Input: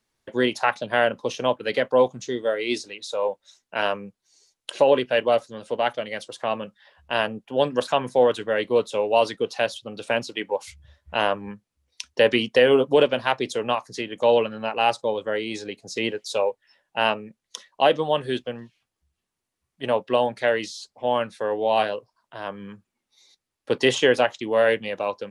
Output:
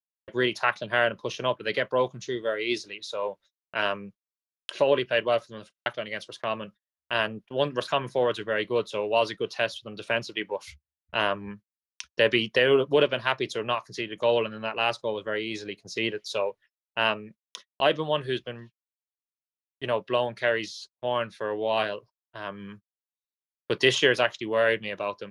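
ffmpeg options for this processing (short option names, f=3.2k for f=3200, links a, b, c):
-filter_complex "[0:a]asettb=1/sr,asplit=3[a][b][c];[a]atrim=end=22.594[d];[b]atrim=start=22.59:end=24.37,asetpts=PTS-STARTPTS,afade=t=in:d=0.004:c=qsin,afade=t=out:st=1.776:d=0.004:c=qsin,highshelf=f=3.3k:g=4.5[e];[c]atrim=start=24.366[f];[d][e]acrossfade=d=0.004:c1=hsin:c2=qsin[g];[g][f]acrossfade=d=0.004:c1=qsin:c2=hsin,asplit=6[h][i][j][k][l][m];[h]atrim=end=5.702[n];[i]atrim=start=5.658:end=5.702[o];[j]atrim=start=5.658:end=5.702[p];[k]atrim=start=5.658:end=5.702[q];[l]atrim=start=5.658:end=5.702[r];[m]atrim=start=5.858[s];[n][o]acrossfade=d=0.004:c1=hsin:c2=hsin[t];[t][p]acrossfade=d=0.004:c1=hsin:c2=hsin[u];[u][q]acrossfade=d=0.004:c1=hsin:c2=hsin[v];[v][r]acrossfade=d=0.004:c1=hsin:c2=hsin[w];[w][s]acrossfade=d=0.004:c1=hsin:c2=hsin,highshelf=f=7.1k:g=-6.5,agate=range=-49dB:threshold=-43dB:ratio=16:detection=peak,equalizer=f=250:t=o:w=0.33:g=-9,equalizer=f=500:t=o:w=0.33:g=-7,equalizer=f=800:t=o:w=0.33:g=-10,equalizer=f=8k:t=o:w=0.33:g=-9"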